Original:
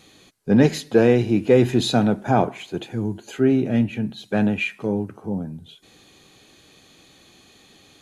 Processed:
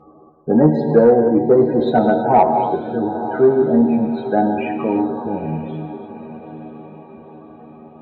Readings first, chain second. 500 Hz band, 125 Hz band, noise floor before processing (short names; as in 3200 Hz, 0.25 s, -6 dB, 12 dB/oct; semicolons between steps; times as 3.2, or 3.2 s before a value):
+6.5 dB, -1.0 dB, -53 dBFS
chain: resonant high shelf 1700 Hz -12 dB, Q 1.5; in parallel at -1 dB: compressor, threshold -27 dBFS, peak gain reduction 16.5 dB; on the sum: loudest bins only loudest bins 32; metallic resonator 76 Hz, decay 0.22 s, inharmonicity 0.002; on a send: diffused feedback echo 0.903 s, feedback 50%, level -14 dB; on the sum: non-linear reverb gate 0.34 s flat, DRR 5 dB; overdrive pedal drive 15 dB, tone 1500 Hz, clips at -5 dBFS; gain +6.5 dB